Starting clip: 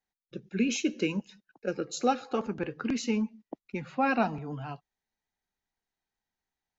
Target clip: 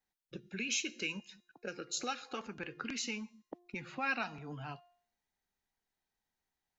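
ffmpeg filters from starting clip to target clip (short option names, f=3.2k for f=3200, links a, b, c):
-filter_complex "[0:a]bandreject=f=352.4:t=h:w=4,bandreject=f=704.8:t=h:w=4,bandreject=f=1.0572k:t=h:w=4,bandreject=f=1.4096k:t=h:w=4,bandreject=f=1.762k:t=h:w=4,bandreject=f=2.1144k:t=h:w=4,bandreject=f=2.4668k:t=h:w=4,bandreject=f=2.8192k:t=h:w=4,bandreject=f=3.1716k:t=h:w=4,bandreject=f=3.524k:t=h:w=4,bandreject=f=3.8764k:t=h:w=4,bandreject=f=4.2288k:t=h:w=4,bandreject=f=4.5812k:t=h:w=4,bandreject=f=4.9336k:t=h:w=4,bandreject=f=5.286k:t=h:w=4,bandreject=f=5.6384k:t=h:w=4,bandreject=f=5.9908k:t=h:w=4,bandreject=f=6.3432k:t=h:w=4,bandreject=f=6.6956k:t=h:w=4,bandreject=f=7.048k:t=h:w=4,bandreject=f=7.4004k:t=h:w=4,bandreject=f=7.7528k:t=h:w=4,bandreject=f=8.1052k:t=h:w=4,bandreject=f=8.4576k:t=h:w=4,bandreject=f=8.81k:t=h:w=4,bandreject=f=9.1624k:t=h:w=4,bandreject=f=9.5148k:t=h:w=4,bandreject=f=9.8672k:t=h:w=4,bandreject=f=10.2196k:t=h:w=4,bandreject=f=10.572k:t=h:w=4,bandreject=f=10.9244k:t=h:w=4,bandreject=f=11.2768k:t=h:w=4,bandreject=f=11.6292k:t=h:w=4,bandreject=f=11.9816k:t=h:w=4,bandreject=f=12.334k:t=h:w=4,bandreject=f=12.6864k:t=h:w=4,bandreject=f=13.0388k:t=h:w=4,bandreject=f=13.3912k:t=h:w=4,acrossover=split=1400[a][b];[a]acompressor=threshold=-42dB:ratio=6[c];[c][b]amix=inputs=2:normalize=0"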